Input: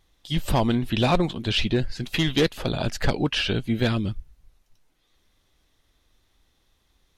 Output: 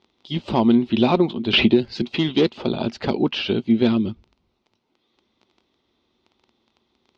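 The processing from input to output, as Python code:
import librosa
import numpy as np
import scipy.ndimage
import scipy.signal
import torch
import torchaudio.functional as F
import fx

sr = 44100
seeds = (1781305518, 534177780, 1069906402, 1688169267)

y = fx.dmg_crackle(x, sr, seeds[0], per_s=11.0, level_db=-36.0)
y = fx.cabinet(y, sr, low_hz=120.0, low_slope=12, high_hz=4700.0, hz=(130.0, 230.0, 370.0, 910.0, 1700.0), db=(-3, 9, 9, 4, -9))
y = fx.band_squash(y, sr, depth_pct=100, at=(1.53, 2.02))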